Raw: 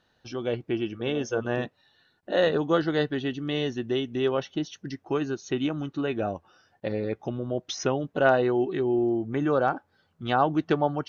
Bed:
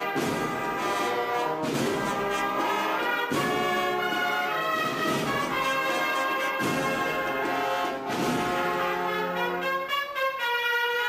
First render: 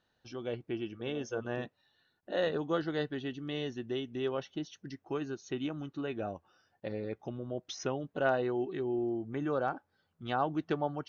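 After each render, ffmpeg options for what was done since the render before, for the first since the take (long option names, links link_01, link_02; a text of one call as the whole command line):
ffmpeg -i in.wav -af "volume=-8.5dB" out.wav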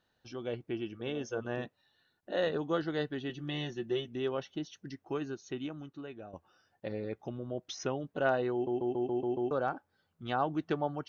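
ffmpeg -i in.wav -filter_complex "[0:a]asettb=1/sr,asplit=3[link_01][link_02][link_03];[link_01]atrim=end=3.294[link_04];[link_02]atrim=start=3.29:end=4.08,asetpts=PTS-STARTPTS,afade=type=in:duration=0.004:curve=qsin,afade=type=out:start_time=0.786:duration=0.004:curve=qsin,aecho=1:1:5.7:0.76,atrim=end_sample=34839[link_05];[link_03]atrim=start=4.076[link_06];[link_04][link_05]acrossfade=duration=0.004:curve1=hsin:curve2=qsin[link_07];[link_07][link_06]acrossfade=duration=0.004:curve1=qsin:curve2=hsin,asplit=9[link_08][link_09][link_10][link_11][link_12][link_13][link_14][link_15][link_16];[link_08]atrim=end=6.33,asetpts=PTS-STARTPTS,afade=type=out:start_time=5.21:duration=1.12:silence=0.237137[link_17];[link_09]atrim=start=6.33:end=8.672,asetpts=PTS-STARTPTS,afade=type=in:duration=0.004:curve=hsin:silence=0.237137[link_18];[link_10]atrim=start=8.528:end=8.672[link_19];[link_11]atrim=start=8.528:end=8.672[link_20];[link_12]atrim=start=8.528:end=8.672[link_21];[link_13]atrim=start=8.528:end=8.672[link_22];[link_14]atrim=start=8.528:end=8.672[link_23];[link_15]atrim=start=8.528:end=8.672[link_24];[link_16]atrim=start=9.508[link_25];[link_17][link_18]concat=n=2:v=0:a=1[link_26];[link_26][link_19]acrossfade=duration=0.004:curve1=hsin:curve2=hsin[link_27];[link_27][link_20]acrossfade=duration=0.004:curve1=hsin:curve2=hsin[link_28];[link_28][link_21]acrossfade=duration=0.004:curve1=hsin:curve2=hsin[link_29];[link_29][link_22]acrossfade=duration=0.004:curve1=hsin:curve2=hsin[link_30];[link_30][link_23]acrossfade=duration=0.004:curve1=hsin:curve2=hsin[link_31];[link_31][link_24]acrossfade=duration=0.004:curve1=hsin:curve2=hsin[link_32];[link_32][link_25]acrossfade=duration=0.004:curve1=hsin:curve2=hsin" out.wav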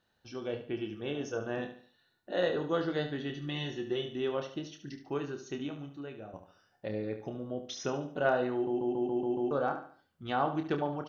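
ffmpeg -i in.wav -filter_complex "[0:a]asplit=2[link_01][link_02];[link_02]adelay=28,volume=-7.5dB[link_03];[link_01][link_03]amix=inputs=2:normalize=0,asplit=2[link_04][link_05];[link_05]aecho=0:1:72|144|216|288:0.316|0.117|0.0433|0.016[link_06];[link_04][link_06]amix=inputs=2:normalize=0" out.wav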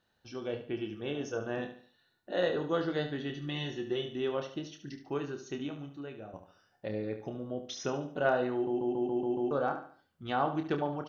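ffmpeg -i in.wav -af anull out.wav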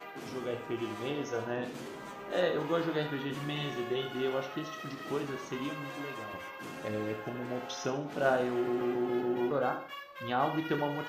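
ffmpeg -i in.wav -i bed.wav -filter_complex "[1:a]volume=-16.5dB[link_01];[0:a][link_01]amix=inputs=2:normalize=0" out.wav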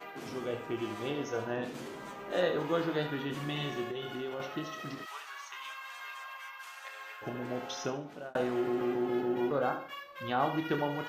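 ffmpeg -i in.wav -filter_complex "[0:a]asettb=1/sr,asplit=3[link_01][link_02][link_03];[link_01]atrim=end=3.844[link_04];[link_02]atrim=start=3.84:end=4.4,asetpts=PTS-STARTPTS,afade=type=in:duration=0.004:curve=qsin,afade=type=out:start_time=0.556:duration=0.004:curve=qsin,acompressor=threshold=-34dB:ratio=6:attack=3.2:release=140:knee=1:detection=peak[link_05];[link_03]atrim=start=4.396[link_06];[link_04][link_05]acrossfade=duration=0.004:curve1=hsin:curve2=qsin[link_07];[link_07][link_06]acrossfade=duration=0.004:curve1=qsin:curve2=hsin,asplit=3[link_08][link_09][link_10];[link_08]afade=type=out:start_time=5.04:duration=0.02[link_11];[link_09]highpass=frequency=950:width=0.5412,highpass=frequency=950:width=1.3066,afade=type=in:start_time=5.04:duration=0.02,afade=type=out:start_time=7.21:duration=0.02[link_12];[link_10]afade=type=in:start_time=7.21:duration=0.02[link_13];[link_11][link_12][link_13]amix=inputs=3:normalize=0,asplit=2[link_14][link_15];[link_14]atrim=end=8.35,asetpts=PTS-STARTPTS,afade=type=out:start_time=7.8:duration=0.55[link_16];[link_15]atrim=start=8.35,asetpts=PTS-STARTPTS,afade=type=in:duration=0.004:curve=hsin[link_17];[link_16][link_17]concat=n=2:v=0:a=1" out.wav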